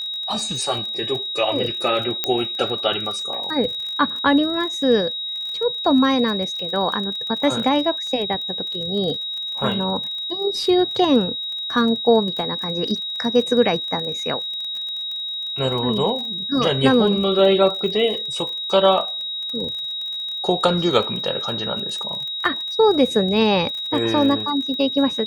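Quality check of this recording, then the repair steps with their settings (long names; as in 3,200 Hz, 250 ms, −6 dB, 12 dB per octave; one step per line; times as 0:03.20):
surface crackle 31 per second −28 dBFS
whistle 3,800 Hz −25 dBFS
0:02.24: click −4 dBFS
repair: click removal
notch filter 3,800 Hz, Q 30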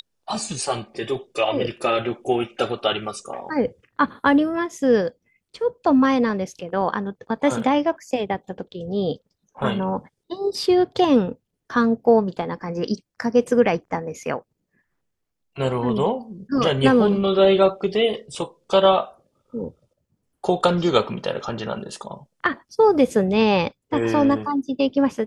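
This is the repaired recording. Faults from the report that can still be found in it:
none of them is left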